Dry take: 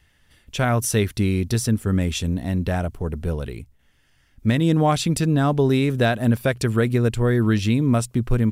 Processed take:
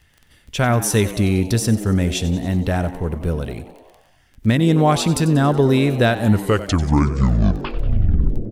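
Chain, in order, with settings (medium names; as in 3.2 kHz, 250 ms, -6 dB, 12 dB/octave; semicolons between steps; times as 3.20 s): tape stop on the ending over 2.45 s; crackle 13 per s -35 dBFS; frequency-shifting echo 93 ms, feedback 62%, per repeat +92 Hz, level -15 dB; trim +3 dB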